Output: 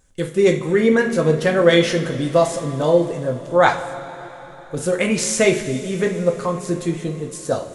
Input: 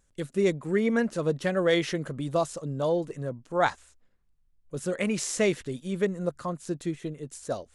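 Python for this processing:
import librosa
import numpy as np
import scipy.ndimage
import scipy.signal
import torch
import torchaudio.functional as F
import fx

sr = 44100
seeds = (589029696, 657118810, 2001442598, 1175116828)

y = fx.rev_double_slope(x, sr, seeds[0], early_s=0.37, late_s=4.2, knee_db=-17, drr_db=1.5)
y = F.gain(torch.from_numpy(y), 8.0).numpy()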